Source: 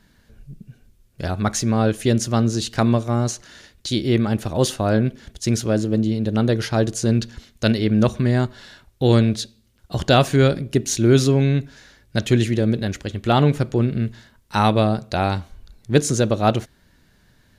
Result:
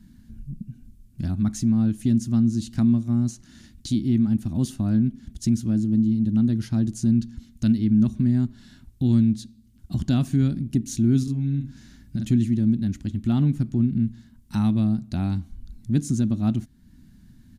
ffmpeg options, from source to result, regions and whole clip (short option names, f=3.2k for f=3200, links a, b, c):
-filter_complex "[0:a]asettb=1/sr,asplit=3[a][b][c];[a]atrim=end=11.234[d];[b]atrim=start=11.23:end=12.25,asetpts=PTS-STARTPTS,afade=t=in:d=0.004:c=qsin,afade=t=out:st=1.016:d=0.004:c=qsin,acompressor=threshold=-24dB:ratio=4:attack=3.2:release=140:knee=1:detection=peak,asplit=2[e][f];[f]adelay=43,volume=-2.5dB[g];[e][g]amix=inputs=2:normalize=0,atrim=end_sample=44982[h];[c]atrim=start=12.246[i];[d][h]acrossfade=d=0.004:c1=hsin:c2=qsin[j];[j][i]acrossfade=d=0.004:c1=qsin:c2=hsin,firequalizer=gain_entry='entry(140,0);entry(240,6);entry(470,-25);entry(690,-17);entry(8300,-8)':delay=0.05:min_phase=1,acompressor=threshold=-42dB:ratio=1.5,volume=6.5dB"